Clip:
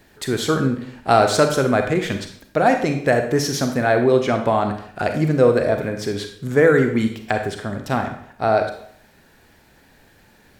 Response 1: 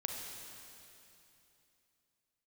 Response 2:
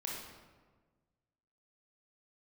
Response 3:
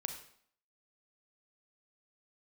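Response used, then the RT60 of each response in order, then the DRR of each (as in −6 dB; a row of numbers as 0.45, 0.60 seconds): 3; 3.0, 1.4, 0.60 seconds; 1.0, −3.5, 5.0 decibels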